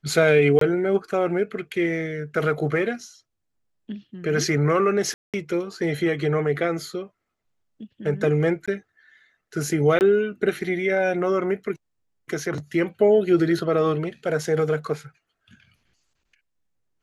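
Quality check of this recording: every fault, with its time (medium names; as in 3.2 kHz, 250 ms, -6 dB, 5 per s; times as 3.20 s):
0.59–0.61 s: dropout 23 ms
5.14–5.34 s: dropout 197 ms
8.66–8.68 s: dropout 16 ms
9.99–10.01 s: dropout 19 ms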